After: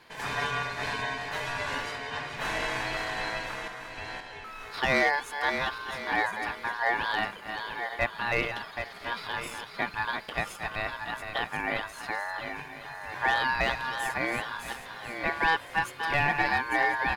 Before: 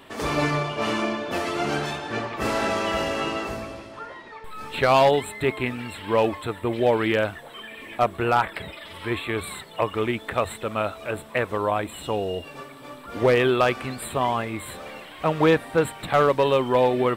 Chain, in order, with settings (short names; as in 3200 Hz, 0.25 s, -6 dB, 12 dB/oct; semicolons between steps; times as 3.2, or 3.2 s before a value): regenerating reverse delay 0.526 s, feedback 41%, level -7 dB; echo 1.027 s -22 dB; ring modulator 1300 Hz; gain -4.5 dB